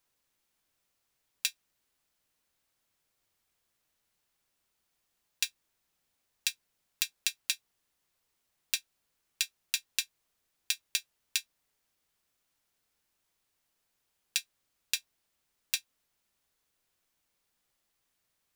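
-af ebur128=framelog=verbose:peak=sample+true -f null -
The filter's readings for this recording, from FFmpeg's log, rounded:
Integrated loudness:
  I:         -34.5 LUFS
  Threshold: -44.8 LUFS
Loudness range:
  LRA:         7.8 LU
  Threshold: -58.7 LUFS
  LRA low:   -43.8 LUFS
  LRA high:  -36.0 LUFS
Sample peak:
  Peak:       -5.8 dBFS
True peak:
  Peak:       -5.8 dBFS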